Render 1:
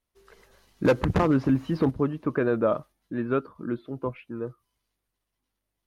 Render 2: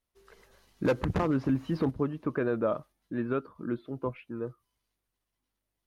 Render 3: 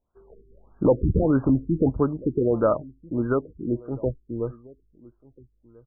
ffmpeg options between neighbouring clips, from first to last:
-af "alimiter=limit=-16dB:level=0:latency=1:release=279,volume=-2.5dB"
-filter_complex "[0:a]asubboost=boost=6:cutoff=73,asplit=2[a][b];[b]adelay=1341,volume=-23dB,highshelf=f=4k:g=-30.2[c];[a][c]amix=inputs=2:normalize=0,afftfilt=real='re*lt(b*sr/1024,420*pow(1700/420,0.5+0.5*sin(2*PI*1.6*pts/sr)))':imag='im*lt(b*sr/1024,420*pow(1700/420,0.5+0.5*sin(2*PI*1.6*pts/sr)))':win_size=1024:overlap=0.75,volume=8.5dB"

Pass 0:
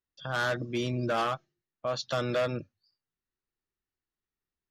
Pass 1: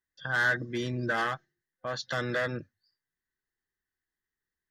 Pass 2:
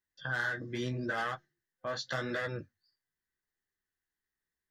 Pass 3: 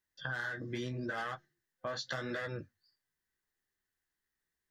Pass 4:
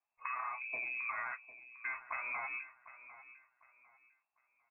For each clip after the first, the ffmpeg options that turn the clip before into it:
-af "superequalizer=8b=0.631:11b=3.55:12b=0.631,volume=-1.5dB"
-af "acompressor=threshold=-29dB:ratio=6,flanger=delay=10:depth=9.3:regen=-29:speed=0.8:shape=sinusoidal,volume=2dB"
-af "acompressor=threshold=-37dB:ratio=6,volume=2dB"
-af "aecho=1:1:751|1502|2253:0.168|0.047|0.0132,lowpass=f=2.3k:t=q:w=0.5098,lowpass=f=2.3k:t=q:w=0.6013,lowpass=f=2.3k:t=q:w=0.9,lowpass=f=2.3k:t=q:w=2.563,afreqshift=-2700,volume=-1.5dB"

